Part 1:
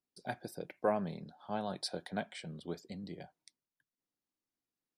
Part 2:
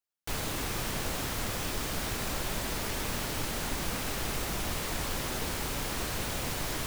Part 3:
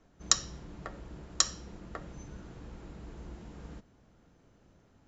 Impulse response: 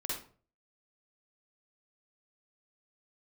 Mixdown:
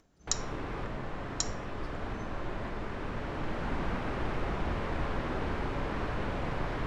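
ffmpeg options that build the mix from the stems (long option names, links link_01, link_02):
-filter_complex "[0:a]aemphasis=mode=reproduction:type=bsi,volume=-19.5dB,asplit=2[link_01][link_02];[1:a]lowpass=1700,volume=-1dB,asplit=2[link_03][link_04];[link_04]volume=-6dB[link_05];[2:a]acompressor=mode=upward:threshold=-49dB:ratio=2.5,equalizer=frequency=11000:width=0.42:gain=6.5,volume=-11dB[link_06];[link_02]apad=whole_len=302603[link_07];[link_03][link_07]sidechaincompress=threshold=-60dB:ratio=8:attack=48:release=1080[link_08];[3:a]atrim=start_sample=2205[link_09];[link_05][link_09]afir=irnorm=-1:irlink=0[link_10];[link_01][link_08][link_06][link_10]amix=inputs=4:normalize=0"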